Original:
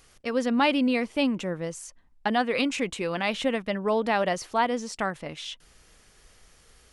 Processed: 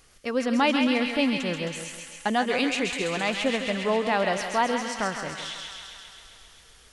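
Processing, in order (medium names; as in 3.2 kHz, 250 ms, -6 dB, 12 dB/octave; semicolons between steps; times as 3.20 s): feedback echo behind a high-pass 133 ms, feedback 75%, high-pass 1.7 kHz, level -3.5 dB; modulated delay 161 ms, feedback 42%, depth 50 cents, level -10 dB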